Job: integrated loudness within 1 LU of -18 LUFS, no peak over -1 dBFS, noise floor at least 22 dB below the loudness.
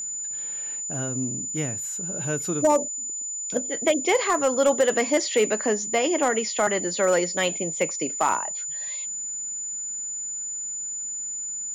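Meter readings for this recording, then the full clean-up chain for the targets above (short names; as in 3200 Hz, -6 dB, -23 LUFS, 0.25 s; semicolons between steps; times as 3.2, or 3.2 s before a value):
clipped 0.3%; flat tops at -13.0 dBFS; steady tone 7000 Hz; tone level -29 dBFS; loudness -24.5 LUFS; peak -13.0 dBFS; loudness target -18.0 LUFS
-> clip repair -13 dBFS; notch 7000 Hz, Q 30; gain +6.5 dB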